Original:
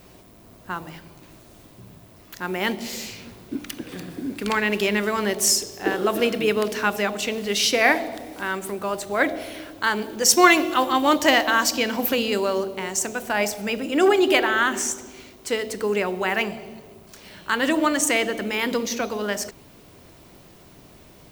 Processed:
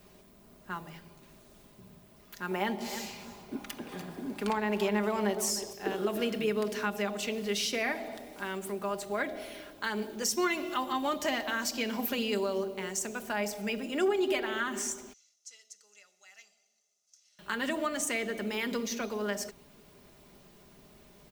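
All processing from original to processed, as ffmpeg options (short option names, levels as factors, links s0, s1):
-filter_complex "[0:a]asettb=1/sr,asplit=3[s0][s1][s2];[s0]atrim=end=2.514[s3];[s1]atrim=start=2.51:end=5.73,asetpts=PTS-STARTPTS,afade=t=in:d=0.004:c=qsin,afade=t=out:st=3.216:d=0.004:c=qsin,equalizer=f=840:w=1.4:g=11.5,aecho=1:1:305:0.178,atrim=end_sample=142002[s4];[s2]atrim=start=5.726[s5];[s3][s4]acrossfade=d=0.004:c1=hsin:c2=qsin[s6];[s6][s5]acrossfade=d=0.004:c1=qsin:c2=hsin,asettb=1/sr,asplit=3[s7][s8][s9];[s7]atrim=end=15.134[s10];[s8]atrim=start=15.13:end=17.39,asetpts=PTS-STARTPTS,afade=t=in:d=0.004:c=qsin,afade=t=out:st=2.256:d=0.004:c=qsin,bandpass=f=6200:t=q:w=5.9,aecho=1:1:1.5:0.56,atrim=end_sample=99666[s11];[s9]atrim=start=17.386[s12];[s10][s11]acrossfade=d=0.004:c1=hsin:c2=qsin[s13];[s13][s12]acrossfade=d=0.004:c1=qsin:c2=hsin,aecho=1:1:4.9:0.5,acrossover=split=300[s14][s15];[s15]acompressor=threshold=0.1:ratio=4[s16];[s14][s16]amix=inputs=2:normalize=0,volume=0.355"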